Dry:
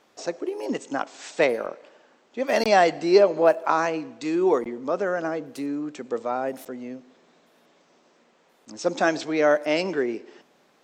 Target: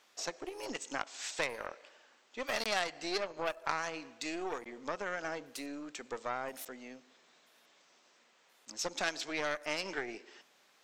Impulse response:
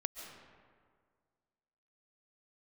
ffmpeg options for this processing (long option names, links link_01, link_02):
-af "aeval=exprs='0.531*(cos(1*acos(clip(val(0)/0.531,-1,1)))-cos(1*PI/2))+0.075*(cos(3*acos(clip(val(0)/0.531,-1,1)))-cos(3*PI/2))+0.0422*(cos(6*acos(clip(val(0)/0.531,-1,1)))-cos(6*PI/2))':channel_layout=same,acompressor=threshold=-28dB:ratio=4,tiltshelf=frequency=870:gain=-8.5,volume=-3dB"